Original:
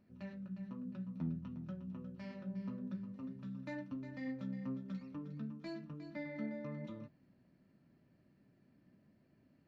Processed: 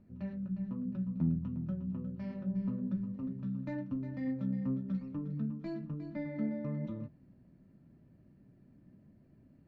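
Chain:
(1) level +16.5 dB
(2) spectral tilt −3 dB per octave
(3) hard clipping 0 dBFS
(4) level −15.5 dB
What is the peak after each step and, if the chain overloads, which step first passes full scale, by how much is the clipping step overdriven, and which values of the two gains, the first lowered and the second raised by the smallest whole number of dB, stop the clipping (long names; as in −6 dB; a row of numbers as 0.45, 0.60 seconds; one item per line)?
−12.5, −5.0, −5.0, −20.5 dBFS
no step passes full scale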